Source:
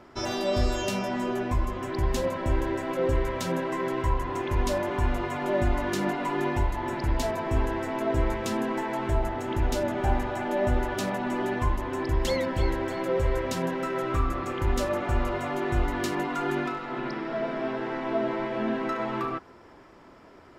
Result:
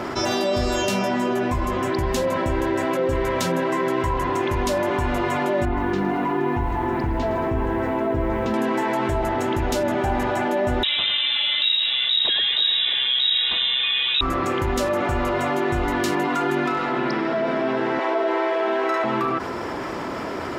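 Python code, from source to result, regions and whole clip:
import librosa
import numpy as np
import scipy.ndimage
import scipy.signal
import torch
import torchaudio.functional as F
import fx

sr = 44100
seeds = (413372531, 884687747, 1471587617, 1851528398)

y = fx.chain(x, sr, fx.spacing_loss(db_at_10k=31),
    fx.notch(hz=590.0, q=7.5),
    fx.echo_crushed(ms=113, feedback_pct=55, bits=9, wet_db=-14.0), at=(5.65, 8.54))
y = fx.chain(y, sr, fx.freq_invert(carrier_hz=3800),
    fx.echo_single(ms=106, db=-8.0), at=(10.83, 14.21))
y = fx.chain(y, sr, fx.steep_highpass(hz=350.0, slope=36),
    fx.doubler(ms=49.0, db=-2.0), at=(17.99, 19.04))
y = fx.highpass(y, sr, hz=110.0, slope=6)
y = fx.env_flatten(y, sr, amount_pct=70)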